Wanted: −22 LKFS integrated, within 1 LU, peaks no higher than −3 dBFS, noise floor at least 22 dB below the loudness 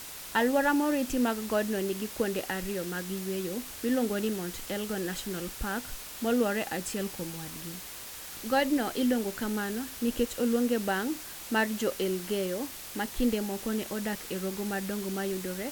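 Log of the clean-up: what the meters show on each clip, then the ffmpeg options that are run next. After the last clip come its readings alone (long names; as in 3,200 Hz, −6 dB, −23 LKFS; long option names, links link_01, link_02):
background noise floor −43 dBFS; target noise floor −53 dBFS; integrated loudness −31.0 LKFS; sample peak −13.5 dBFS; target loudness −22.0 LKFS
→ -af "afftdn=noise_reduction=10:noise_floor=-43"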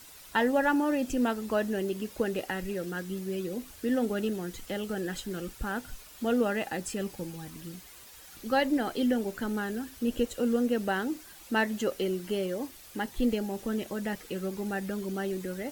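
background noise floor −51 dBFS; target noise floor −53 dBFS
→ -af "afftdn=noise_reduction=6:noise_floor=-51"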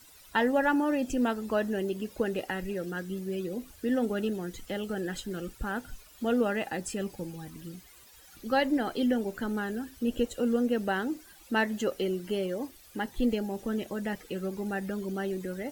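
background noise floor −55 dBFS; integrated loudness −31.0 LKFS; sample peak −14.0 dBFS; target loudness −22.0 LKFS
→ -af "volume=9dB"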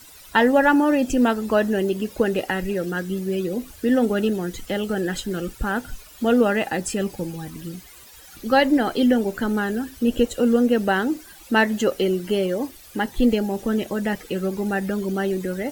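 integrated loudness −22.0 LKFS; sample peak −5.0 dBFS; background noise floor −46 dBFS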